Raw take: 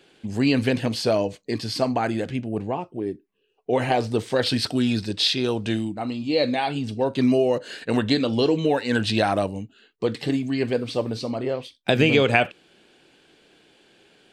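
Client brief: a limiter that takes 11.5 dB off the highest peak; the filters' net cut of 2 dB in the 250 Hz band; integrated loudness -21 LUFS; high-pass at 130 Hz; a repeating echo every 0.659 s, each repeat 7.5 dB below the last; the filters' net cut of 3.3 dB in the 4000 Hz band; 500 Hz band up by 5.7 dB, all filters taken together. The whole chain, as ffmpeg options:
-af "highpass=130,equalizer=f=250:t=o:g=-4.5,equalizer=f=500:t=o:g=8,equalizer=f=4k:t=o:g=-4,alimiter=limit=-12.5dB:level=0:latency=1,aecho=1:1:659|1318|1977|2636|3295:0.422|0.177|0.0744|0.0312|0.0131,volume=2.5dB"

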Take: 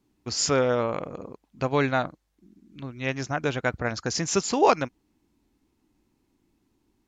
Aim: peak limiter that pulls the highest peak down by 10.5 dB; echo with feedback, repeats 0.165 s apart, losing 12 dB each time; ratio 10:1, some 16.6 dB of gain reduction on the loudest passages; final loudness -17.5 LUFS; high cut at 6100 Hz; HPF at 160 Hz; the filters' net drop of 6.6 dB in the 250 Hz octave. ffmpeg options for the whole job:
-af "highpass=160,lowpass=6.1k,equalizer=f=250:t=o:g=-7.5,acompressor=threshold=-32dB:ratio=10,alimiter=level_in=5.5dB:limit=-24dB:level=0:latency=1,volume=-5.5dB,aecho=1:1:165|330|495:0.251|0.0628|0.0157,volume=23.5dB"

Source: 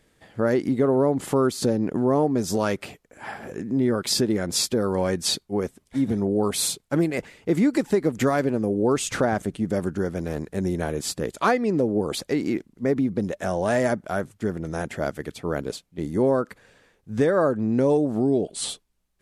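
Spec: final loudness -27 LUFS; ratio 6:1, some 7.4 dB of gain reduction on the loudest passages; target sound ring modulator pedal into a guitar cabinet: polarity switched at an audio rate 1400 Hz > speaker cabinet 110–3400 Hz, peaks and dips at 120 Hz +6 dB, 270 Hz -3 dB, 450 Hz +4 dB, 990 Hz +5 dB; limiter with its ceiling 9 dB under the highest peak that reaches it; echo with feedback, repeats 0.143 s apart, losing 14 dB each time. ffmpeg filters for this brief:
-af "acompressor=threshold=-24dB:ratio=6,alimiter=limit=-22dB:level=0:latency=1,aecho=1:1:143|286:0.2|0.0399,aeval=exprs='val(0)*sgn(sin(2*PI*1400*n/s))':c=same,highpass=110,equalizer=f=120:t=q:w=4:g=6,equalizer=f=270:t=q:w=4:g=-3,equalizer=f=450:t=q:w=4:g=4,equalizer=f=990:t=q:w=4:g=5,lowpass=f=3.4k:w=0.5412,lowpass=f=3.4k:w=1.3066,volume=3dB"

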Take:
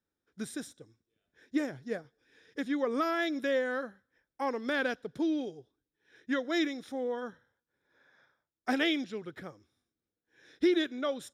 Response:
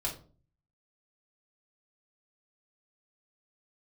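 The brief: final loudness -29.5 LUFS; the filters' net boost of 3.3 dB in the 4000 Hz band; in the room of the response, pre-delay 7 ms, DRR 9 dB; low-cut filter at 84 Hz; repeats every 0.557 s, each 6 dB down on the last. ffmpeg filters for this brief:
-filter_complex "[0:a]highpass=84,equalizer=f=4k:t=o:g=4,aecho=1:1:557|1114|1671|2228|2785|3342:0.501|0.251|0.125|0.0626|0.0313|0.0157,asplit=2[a][b];[1:a]atrim=start_sample=2205,adelay=7[c];[b][c]afir=irnorm=-1:irlink=0,volume=-12.5dB[d];[a][d]amix=inputs=2:normalize=0,volume=2.5dB"

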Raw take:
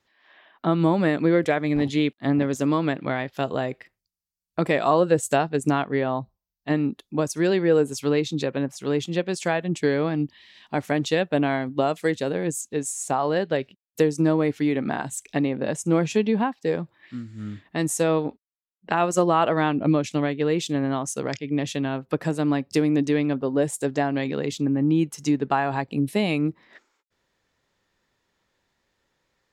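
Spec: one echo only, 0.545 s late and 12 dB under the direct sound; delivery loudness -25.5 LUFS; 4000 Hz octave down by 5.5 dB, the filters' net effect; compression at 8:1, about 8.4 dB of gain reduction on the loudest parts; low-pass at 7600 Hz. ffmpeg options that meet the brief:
-af "lowpass=7.6k,equalizer=f=4k:t=o:g=-7,acompressor=threshold=-23dB:ratio=8,aecho=1:1:545:0.251,volume=3.5dB"

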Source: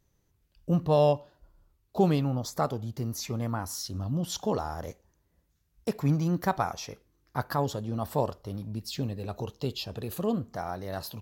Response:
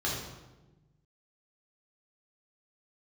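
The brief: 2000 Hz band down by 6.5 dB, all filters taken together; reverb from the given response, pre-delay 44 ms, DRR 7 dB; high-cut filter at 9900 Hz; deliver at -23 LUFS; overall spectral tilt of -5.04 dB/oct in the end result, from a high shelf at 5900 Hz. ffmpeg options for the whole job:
-filter_complex "[0:a]lowpass=9.9k,equalizer=f=2k:t=o:g=-9,highshelf=f=5.9k:g=-7.5,asplit=2[a][b];[1:a]atrim=start_sample=2205,adelay=44[c];[b][c]afir=irnorm=-1:irlink=0,volume=-15dB[d];[a][d]amix=inputs=2:normalize=0,volume=6.5dB"

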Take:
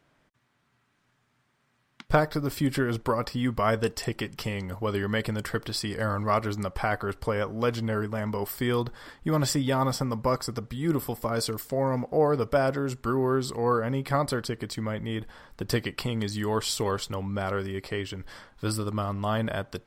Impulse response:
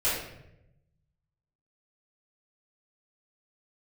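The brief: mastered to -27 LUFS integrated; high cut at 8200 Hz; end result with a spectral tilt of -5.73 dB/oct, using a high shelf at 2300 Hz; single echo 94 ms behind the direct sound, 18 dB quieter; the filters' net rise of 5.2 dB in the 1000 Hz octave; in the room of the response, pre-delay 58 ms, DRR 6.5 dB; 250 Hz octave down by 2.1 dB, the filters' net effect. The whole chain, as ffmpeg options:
-filter_complex "[0:a]lowpass=8.2k,equalizer=f=250:t=o:g=-3,equalizer=f=1k:t=o:g=8.5,highshelf=f=2.3k:g=-8.5,aecho=1:1:94:0.126,asplit=2[a][b];[1:a]atrim=start_sample=2205,adelay=58[c];[b][c]afir=irnorm=-1:irlink=0,volume=-18dB[d];[a][d]amix=inputs=2:normalize=0,volume=-0.5dB"

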